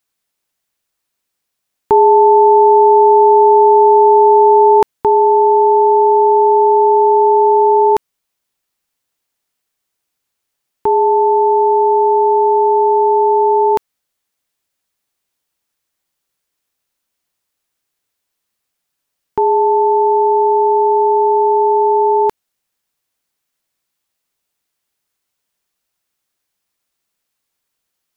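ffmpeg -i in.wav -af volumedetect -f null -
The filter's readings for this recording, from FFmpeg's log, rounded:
mean_volume: -13.6 dB
max_volume: -1.6 dB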